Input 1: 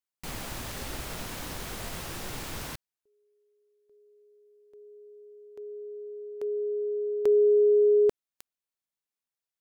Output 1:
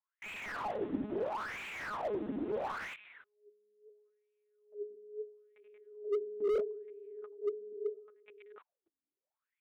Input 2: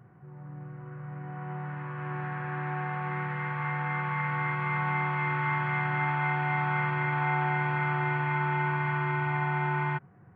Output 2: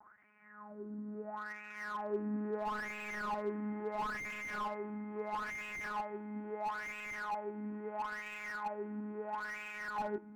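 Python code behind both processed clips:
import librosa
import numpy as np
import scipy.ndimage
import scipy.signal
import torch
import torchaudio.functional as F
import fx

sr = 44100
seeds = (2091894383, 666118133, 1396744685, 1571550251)

p1 = x + fx.echo_multitap(x, sr, ms=(70, 99, 184, 198, 474), db=(-12.0, -8.0, -3.0, -3.5, -17.5), dry=0)
p2 = fx.over_compress(p1, sr, threshold_db=-28.0, ratio=-0.5)
p3 = fx.lpc_monotone(p2, sr, seeds[0], pitch_hz=210.0, order=16)
p4 = fx.wah_lfo(p3, sr, hz=0.75, low_hz=270.0, high_hz=2500.0, q=9.5)
p5 = fx.slew_limit(p4, sr, full_power_hz=4.8)
y = p5 * librosa.db_to_amplitude(11.0)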